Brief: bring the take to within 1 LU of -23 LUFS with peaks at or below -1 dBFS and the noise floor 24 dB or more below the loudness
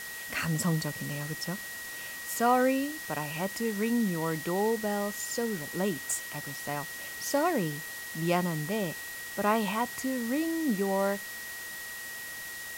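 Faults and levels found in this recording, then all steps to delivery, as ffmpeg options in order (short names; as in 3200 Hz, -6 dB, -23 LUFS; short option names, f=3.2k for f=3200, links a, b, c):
steady tone 1900 Hz; tone level -40 dBFS; noise floor -41 dBFS; noise floor target -55 dBFS; loudness -31.0 LUFS; peak -13.0 dBFS; loudness target -23.0 LUFS
-> -af "bandreject=f=1.9k:w=30"
-af "afftdn=nr=14:nf=-41"
-af "volume=8dB"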